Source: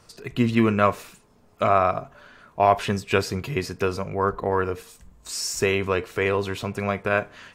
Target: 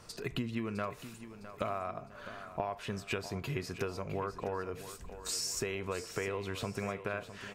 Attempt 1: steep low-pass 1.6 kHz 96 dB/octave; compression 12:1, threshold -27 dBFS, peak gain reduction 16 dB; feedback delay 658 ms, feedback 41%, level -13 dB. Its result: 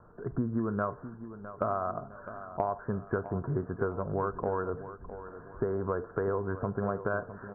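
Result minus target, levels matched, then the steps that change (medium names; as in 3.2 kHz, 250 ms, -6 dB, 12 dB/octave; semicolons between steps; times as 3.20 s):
compression: peak gain reduction -5.5 dB; 2 kHz band -5.0 dB
change: compression 12:1, threshold -33 dBFS, peak gain reduction 21.5 dB; remove: steep low-pass 1.6 kHz 96 dB/octave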